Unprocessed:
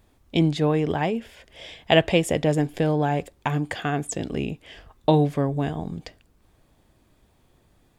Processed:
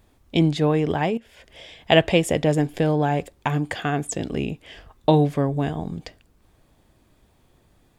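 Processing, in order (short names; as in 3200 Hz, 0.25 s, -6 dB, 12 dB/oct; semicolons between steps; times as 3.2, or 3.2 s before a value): 1.17–1.81 compressor 12:1, threshold -41 dBFS, peak gain reduction 13 dB; gain +1.5 dB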